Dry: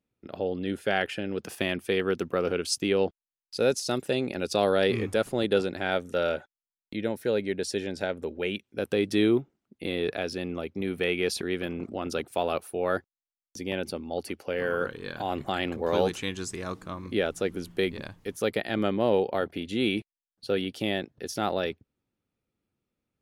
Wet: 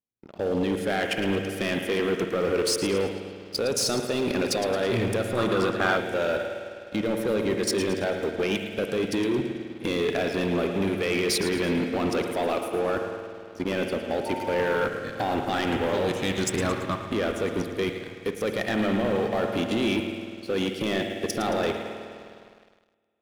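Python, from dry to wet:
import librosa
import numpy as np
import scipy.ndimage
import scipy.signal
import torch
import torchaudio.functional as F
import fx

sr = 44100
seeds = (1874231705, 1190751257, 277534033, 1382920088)

y = fx.level_steps(x, sr, step_db=18)
y = fx.high_shelf(y, sr, hz=4400.0, db=-11.0, at=(12.68, 13.64))
y = fx.echo_feedback(y, sr, ms=111, feedback_pct=47, wet_db=-12)
y = fx.rev_spring(y, sr, rt60_s=3.2, pass_ms=(51,), chirp_ms=75, drr_db=5.0)
y = fx.dmg_tone(y, sr, hz=900.0, level_db=-43.0, at=(14.25, 14.85), fade=0.02)
y = fx.leveller(y, sr, passes=3)
y = fx.peak_eq(y, sr, hz=1200.0, db=13.5, octaves=0.46, at=(5.37, 5.97))
y = fx.upward_expand(y, sr, threshold_db=-36.0, expansion=1.5)
y = F.gain(torch.from_numpy(y), 2.5).numpy()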